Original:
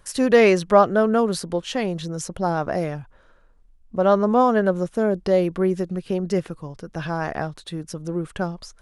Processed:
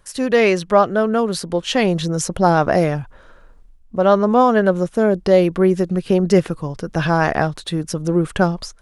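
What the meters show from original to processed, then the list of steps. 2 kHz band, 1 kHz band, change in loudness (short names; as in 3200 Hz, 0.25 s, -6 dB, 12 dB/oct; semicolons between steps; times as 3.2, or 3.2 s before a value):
+5.0 dB, +4.5 dB, +4.0 dB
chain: dynamic EQ 3100 Hz, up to +3 dB, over -34 dBFS, Q 0.84; AGC gain up to 13 dB; gain -1 dB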